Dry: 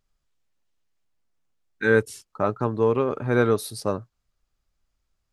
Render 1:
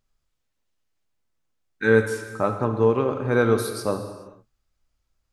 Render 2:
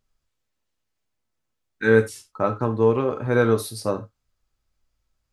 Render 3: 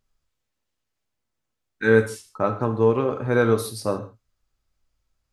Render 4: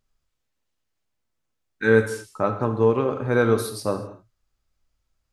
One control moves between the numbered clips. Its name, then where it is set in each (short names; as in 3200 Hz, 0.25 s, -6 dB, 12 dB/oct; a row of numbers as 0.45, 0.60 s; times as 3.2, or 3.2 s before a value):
non-linear reverb, gate: 0.47, 0.11, 0.18, 0.27 s